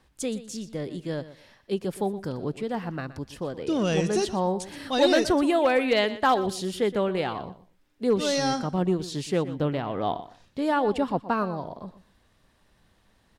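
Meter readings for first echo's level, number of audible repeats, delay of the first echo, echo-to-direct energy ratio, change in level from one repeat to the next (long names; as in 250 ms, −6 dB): −15.0 dB, 2, 121 ms, −15.0 dB, −15.0 dB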